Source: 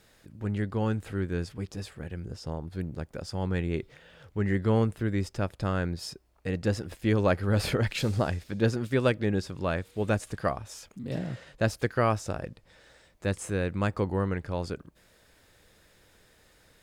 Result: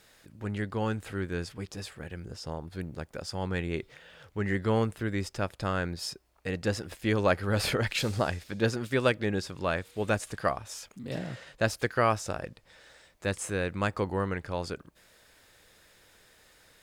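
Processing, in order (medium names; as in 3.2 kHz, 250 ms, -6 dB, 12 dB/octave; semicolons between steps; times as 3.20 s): bass shelf 480 Hz -7.5 dB; trim +3 dB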